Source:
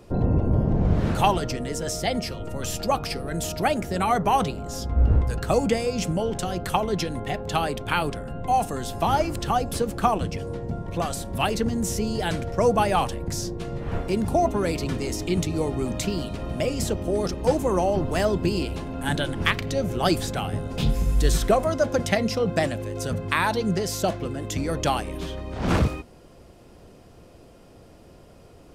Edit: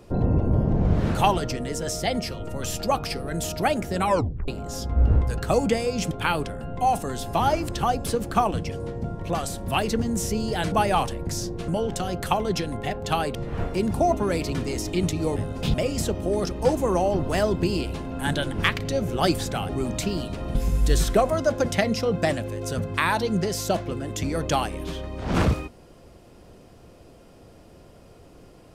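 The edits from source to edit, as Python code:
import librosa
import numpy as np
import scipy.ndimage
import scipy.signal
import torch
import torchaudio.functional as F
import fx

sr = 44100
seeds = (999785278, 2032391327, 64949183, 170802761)

y = fx.edit(x, sr, fx.tape_stop(start_s=4.05, length_s=0.43),
    fx.move(start_s=6.11, length_s=1.67, to_s=13.69),
    fx.cut(start_s=12.39, length_s=0.34),
    fx.swap(start_s=15.7, length_s=0.86, other_s=20.51, other_length_s=0.38), tone=tone)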